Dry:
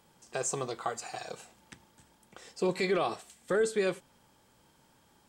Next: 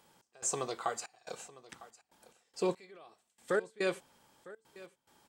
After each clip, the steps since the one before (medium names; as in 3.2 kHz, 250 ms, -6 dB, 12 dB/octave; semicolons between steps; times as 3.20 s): bass shelf 210 Hz -9 dB; trance gate "x.xxx.x.x.x.x..." 71 bpm -24 dB; delay 954 ms -19 dB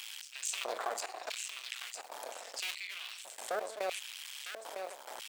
cycle switcher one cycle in 2, muted; LFO high-pass square 0.77 Hz 600–2700 Hz; level flattener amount 70%; trim -6.5 dB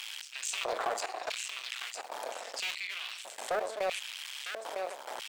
treble shelf 6.6 kHz -8.5 dB; in parallel at -12 dB: sine folder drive 8 dB, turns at -22 dBFS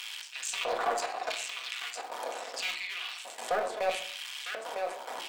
reverberation RT60 0.55 s, pre-delay 4 ms, DRR 1.5 dB